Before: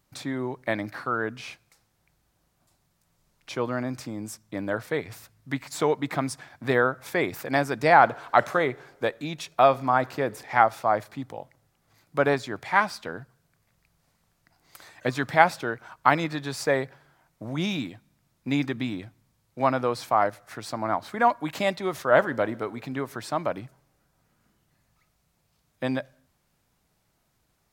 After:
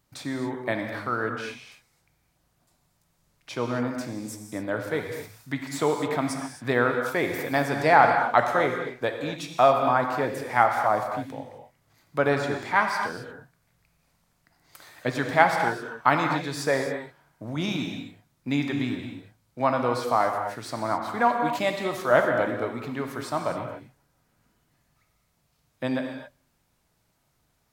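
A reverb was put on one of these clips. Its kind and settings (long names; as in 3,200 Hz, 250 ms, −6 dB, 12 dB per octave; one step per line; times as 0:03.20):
reverb whose tail is shaped and stops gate 290 ms flat, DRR 3.5 dB
level −1 dB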